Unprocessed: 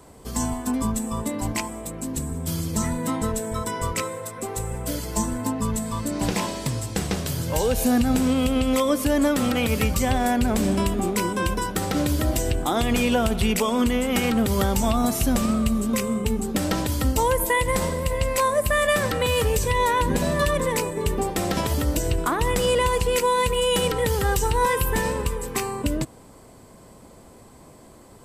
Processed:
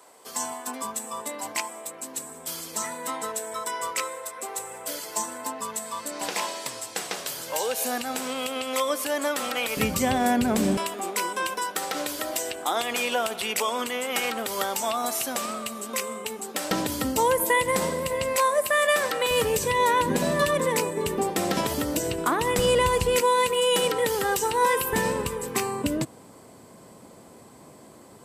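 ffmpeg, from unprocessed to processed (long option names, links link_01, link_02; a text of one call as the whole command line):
ffmpeg -i in.wav -af "asetnsamples=nb_out_samples=441:pad=0,asendcmd='9.77 highpass f 150;10.77 highpass f 590;16.71 highpass f 200;18.36 highpass f 460;19.31 highpass f 180;22.59 highpass f 74;23.21 highpass f 280;24.93 highpass f 130',highpass=620" out.wav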